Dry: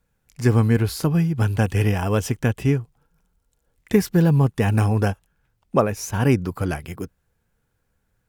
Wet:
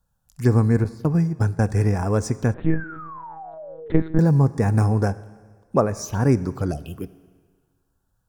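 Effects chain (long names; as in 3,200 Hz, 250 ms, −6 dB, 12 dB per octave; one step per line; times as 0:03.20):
0:00.84–0:01.61: noise gate −21 dBFS, range −20 dB
0:06.72–0:06.96: time-frequency box erased 760–2,500 Hz
phaser swept by the level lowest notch 370 Hz, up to 3,000 Hz, full sweep at −20.5 dBFS
0:02.70–0:04.20: sound drawn into the spectrogram fall 310–1,800 Hz −37 dBFS
four-comb reverb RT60 1.6 s, combs from 29 ms, DRR 17 dB
0:02.54–0:04.19: one-pitch LPC vocoder at 8 kHz 160 Hz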